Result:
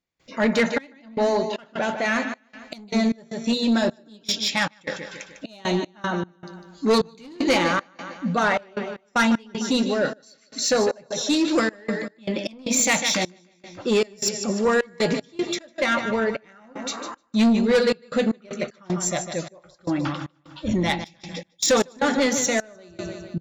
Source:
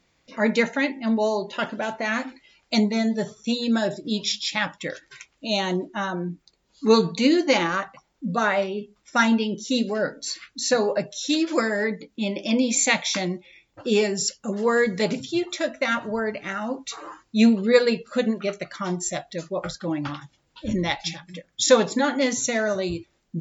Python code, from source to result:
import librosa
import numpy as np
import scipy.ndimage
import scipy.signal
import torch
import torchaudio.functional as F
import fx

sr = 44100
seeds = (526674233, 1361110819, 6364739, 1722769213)

y = fx.echo_feedback(x, sr, ms=151, feedback_pct=49, wet_db=-10.0)
y = 10.0 ** (-17.0 / 20.0) * np.tanh(y / 10.0 ** (-17.0 / 20.0))
y = fx.step_gate(y, sr, bpm=77, pattern='.xxx..xx.xxx.x.x', floor_db=-24.0, edge_ms=4.5)
y = y * librosa.db_to_amplitude(3.5)